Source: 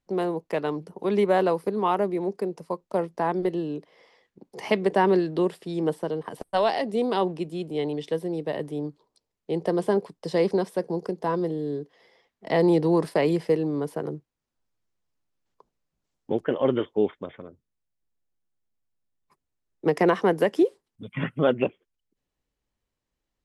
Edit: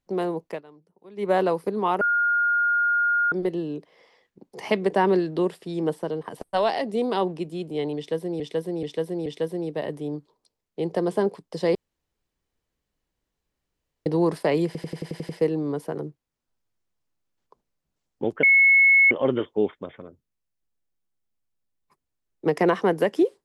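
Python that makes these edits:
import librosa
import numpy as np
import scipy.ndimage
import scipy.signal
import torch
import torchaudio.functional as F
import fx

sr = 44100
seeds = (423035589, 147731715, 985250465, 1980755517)

y = fx.edit(x, sr, fx.fade_down_up(start_s=0.47, length_s=0.84, db=-21.5, fade_s=0.15),
    fx.bleep(start_s=2.01, length_s=1.31, hz=1420.0, db=-18.5),
    fx.repeat(start_s=7.97, length_s=0.43, count=4),
    fx.room_tone_fill(start_s=10.46, length_s=2.31),
    fx.stutter(start_s=13.37, slice_s=0.09, count=8),
    fx.insert_tone(at_s=16.51, length_s=0.68, hz=2190.0, db=-12.5), tone=tone)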